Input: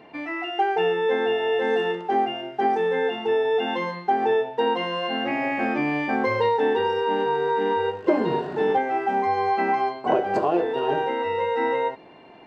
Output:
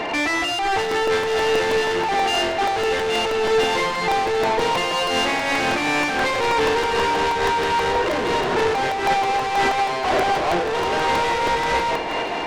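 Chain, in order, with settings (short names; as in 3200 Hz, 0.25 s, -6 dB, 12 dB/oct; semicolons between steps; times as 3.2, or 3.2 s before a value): high shelf 2500 Hz +5.5 dB; in parallel at 0 dB: compressor, threshold -30 dBFS, peak gain reduction 15 dB; on the sum: overdrive pedal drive 34 dB, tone 1900 Hz, clips at -5.5 dBFS; soft clip -17 dBFS, distortion -13 dB; echo with dull and thin repeats by turns 0.251 s, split 1500 Hz, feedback 80%, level -9 dB; crackling interface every 0.16 s, samples 128, repeat, from 0.91; noise-modulated level, depth 60%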